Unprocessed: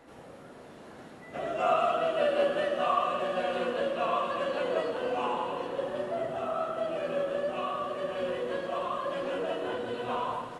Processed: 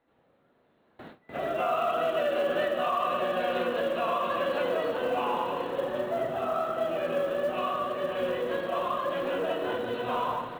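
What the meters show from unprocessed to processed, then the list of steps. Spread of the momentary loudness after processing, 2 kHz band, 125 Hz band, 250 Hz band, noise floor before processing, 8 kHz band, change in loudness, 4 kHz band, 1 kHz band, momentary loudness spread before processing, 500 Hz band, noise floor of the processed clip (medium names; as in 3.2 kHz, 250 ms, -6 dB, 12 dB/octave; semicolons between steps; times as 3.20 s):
4 LU, +2.5 dB, +2.0 dB, +2.0 dB, -49 dBFS, no reading, +1.5 dB, +1.5 dB, +1.5 dB, 15 LU, +1.5 dB, -67 dBFS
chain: peak limiter -22 dBFS, peak gain reduction 7 dB; elliptic low-pass 4 kHz, stop band 40 dB; short-mantissa float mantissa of 4-bit; gate with hold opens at -38 dBFS; trim +3.5 dB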